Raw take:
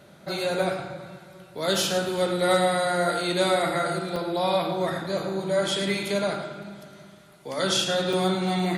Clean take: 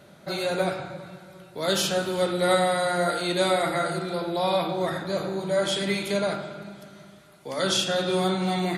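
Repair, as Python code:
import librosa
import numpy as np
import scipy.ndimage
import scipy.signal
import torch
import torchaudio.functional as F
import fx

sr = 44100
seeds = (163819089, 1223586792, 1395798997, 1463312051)

y = fx.fix_declip(x, sr, threshold_db=-13.0)
y = fx.fix_interpolate(y, sr, at_s=(4.16, 8.13), length_ms=3.0)
y = fx.fix_echo_inverse(y, sr, delay_ms=109, level_db=-11.0)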